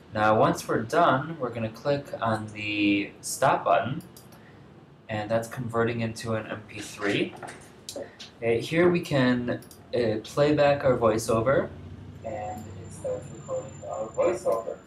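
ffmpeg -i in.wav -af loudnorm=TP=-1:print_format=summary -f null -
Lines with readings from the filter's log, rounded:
Input Integrated:    -27.0 LUFS
Input True Peak:     -10.7 dBTP
Input LRA:             6.9 LU
Input Threshold:     -37.7 LUFS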